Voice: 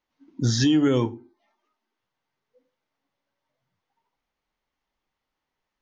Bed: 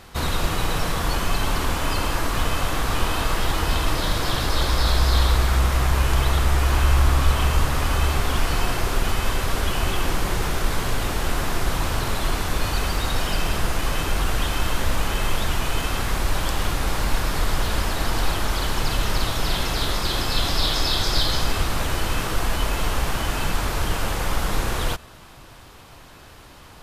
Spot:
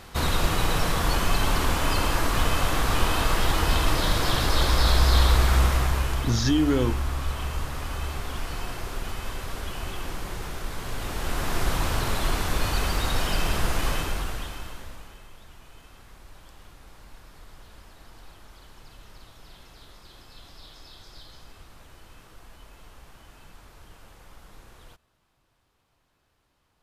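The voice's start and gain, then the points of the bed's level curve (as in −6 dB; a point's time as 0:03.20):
5.85 s, −2.5 dB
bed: 0:05.63 −0.5 dB
0:06.40 −10.5 dB
0:10.75 −10.5 dB
0:11.61 −2 dB
0:13.90 −2 dB
0:15.29 −26 dB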